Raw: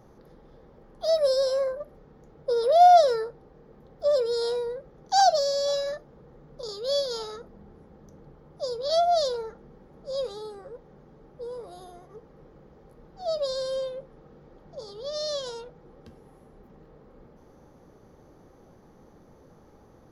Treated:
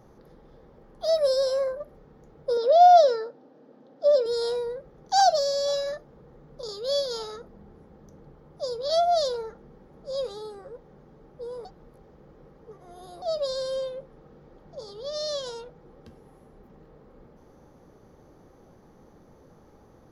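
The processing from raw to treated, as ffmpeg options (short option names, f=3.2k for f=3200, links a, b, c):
-filter_complex "[0:a]asettb=1/sr,asplit=3[a][b][c];[a]atrim=end=2.574[d];[b]atrim=start=2.57:end=4.26,asetpts=PTS-STARTPTS,afade=t=in:d=0.004:c=qsin,afade=t=out:st=1.686:d=0.004:c=qsin,highpass=f=180:w=0.5412,highpass=f=180:w=1.3066,equalizer=f=180:t=q:w=4:g=-7,equalizer=f=270:t=q:w=4:g=9,equalizer=f=400:t=q:w=4:g=-6,equalizer=f=580:t=q:w=4:g=4,equalizer=f=1.1k:t=q:w=4:g=-4,equalizer=f=2.1k:t=q:w=4:g=-6,lowpass=f=6.4k:w=0.5412,lowpass=f=6.4k:w=1.3066[e];[c]atrim=start=4.256[f];[d][e]acrossfade=d=0.004:c1=hsin:c2=qsin[g];[g][f]acrossfade=d=0.004:c1=qsin:c2=hsin,asplit=3[h][i][j];[h]atrim=end=11.652[k];[i]atrim=start=11.648:end=13.222,asetpts=PTS-STARTPTS,areverse[l];[j]atrim=start=13.218[m];[k][l]acrossfade=d=0.004:c1=hsin:c2=hsin[n];[n][m]acrossfade=d=0.004:c1=hsin:c2=hsin"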